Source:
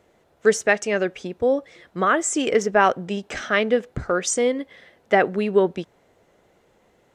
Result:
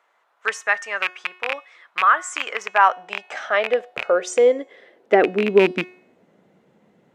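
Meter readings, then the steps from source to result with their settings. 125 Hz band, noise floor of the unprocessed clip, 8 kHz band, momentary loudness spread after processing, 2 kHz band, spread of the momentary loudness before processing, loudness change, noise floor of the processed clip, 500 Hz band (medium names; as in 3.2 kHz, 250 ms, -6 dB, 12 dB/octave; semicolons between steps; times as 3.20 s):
no reading, -62 dBFS, -7.5 dB, 13 LU, +2.5 dB, 10 LU, +1.0 dB, -64 dBFS, +0.5 dB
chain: rattle on loud lows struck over -29 dBFS, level -8 dBFS; tone controls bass +5 dB, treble -7 dB; de-hum 364.4 Hz, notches 39; high-pass sweep 1.1 kHz -> 180 Hz, 2.57–6.52 s; trim -1.5 dB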